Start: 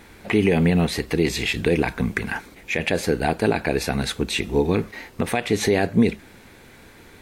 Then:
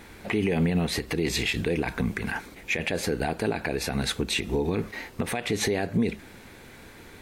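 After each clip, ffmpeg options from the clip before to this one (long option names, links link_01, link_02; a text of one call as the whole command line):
ffmpeg -i in.wav -af "alimiter=limit=-15.5dB:level=0:latency=1:release=107" out.wav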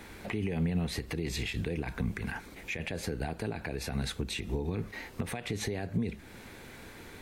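ffmpeg -i in.wav -filter_complex "[0:a]acrossover=split=150[link_01][link_02];[link_02]acompressor=threshold=-40dB:ratio=2[link_03];[link_01][link_03]amix=inputs=2:normalize=0,volume=-1dB" out.wav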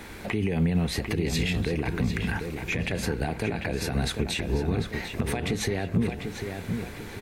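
ffmpeg -i in.wav -filter_complex "[0:a]asplit=2[link_01][link_02];[link_02]adelay=746,lowpass=frequency=3300:poles=1,volume=-6dB,asplit=2[link_03][link_04];[link_04]adelay=746,lowpass=frequency=3300:poles=1,volume=0.47,asplit=2[link_05][link_06];[link_06]adelay=746,lowpass=frequency=3300:poles=1,volume=0.47,asplit=2[link_07][link_08];[link_08]adelay=746,lowpass=frequency=3300:poles=1,volume=0.47,asplit=2[link_09][link_10];[link_10]adelay=746,lowpass=frequency=3300:poles=1,volume=0.47,asplit=2[link_11][link_12];[link_12]adelay=746,lowpass=frequency=3300:poles=1,volume=0.47[link_13];[link_01][link_03][link_05][link_07][link_09][link_11][link_13]amix=inputs=7:normalize=0,volume=6dB" out.wav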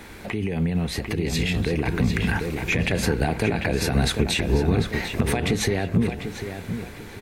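ffmpeg -i in.wav -af "dynaudnorm=framelen=370:gausssize=9:maxgain=6dB" out.wav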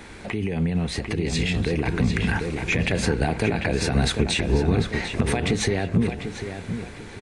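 ffmpeg -i in.wav -af "aresample=22050,aresample=44100" out.wav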